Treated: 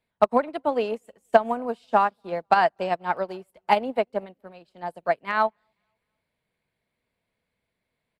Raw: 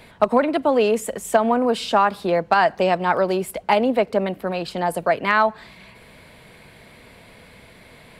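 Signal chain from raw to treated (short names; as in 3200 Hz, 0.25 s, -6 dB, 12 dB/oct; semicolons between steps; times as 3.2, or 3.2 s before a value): dynamic EQ 790 Hz, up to +3 dB, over -28 dBFS, Q 2.8; on a send: feedback echo 0.243 s, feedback 51%, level -23.5 dB; on the sum: upward expander 2.5:1, over -33 dBFS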